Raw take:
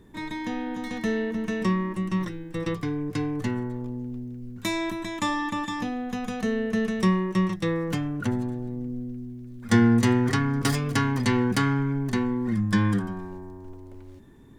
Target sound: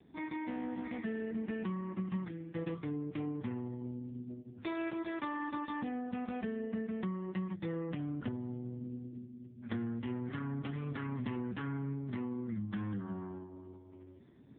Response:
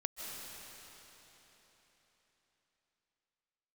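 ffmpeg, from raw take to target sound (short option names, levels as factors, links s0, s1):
-filter_complex "[0:a]asettb=1/sr,asplit=3[s0][s1][s2];[s0]atrim=end=6.604[s3];[s1]atrim=start=6.6:end=7.14,asetpts=PTS-STARTPTS,afade=t=in:d=0.004:c=qsin,afade=t=out:st=0.536:d=0.004:c=qsin,lowpass=f=3000:p=1[s4];[s2]atrim=start=7.136[s5];[s3][s4]acrossfade=d=0.004:c1=hsin:c2=qsin[s6];[s6][s5]acrossfade=d=0.004:c1=qsin:c2=hsin,asettb=1/sr,asplit=3[s7][s8][s9];[s7]atrim=end=8.384[s10];[s8]atrim=start=8.38:end=8.84,asetpts=PTS-STARTPTS,afade=t=in:d=0.004:c=qsin,afade=t=out:st=0.456:d=0.004:c=qsin,asubboost=boost=9.5:cutoff=160[s11];[s9]atrim=start=8.836[s12];[s10][s11]acrossfade=d=0.004:c1=hsin:c2=qsin[s13];[s13][s12]acrossfade=d=0.004:c1=qsin:c2=hsin,acompressor=threshold=0.0398:ratio=10,asettb=1/sr,asplit=3[s14][s15][s16];[s14]atrim=end=4.294[s17];[s15]atrim=start=4.29:end=5.23,asetpts=PTS-STARTPTS,afade=t=in:d=0.004:c=qsin,afade=t=out:st=0.936:d=0.004:c=qsin,aeval=exprs='0.141*(cos(1*acos(clip(val(0)/0.141,-1,1)))-cos(1*PI/2))+0.00251*(cos(4*acos(clip(val(0)/0.141,-1,1)))-cos(4*PI/2))+0.0178*(cos(8*acos(clip(val(0)/0.141,-1,1)))-cos(8*PI/2))':c=same[s18];[s16]atrim=start=5.226[s19];[s17][s18]acrossfade=d=0.004:c1=hsin:c2=qsin[s20];[s20][s19]acrossfade=d=0.004:c1=qsin:c2=hsin,volume=0.562" -ar 8000 -c:a libopencore_amrnb -b:a 5150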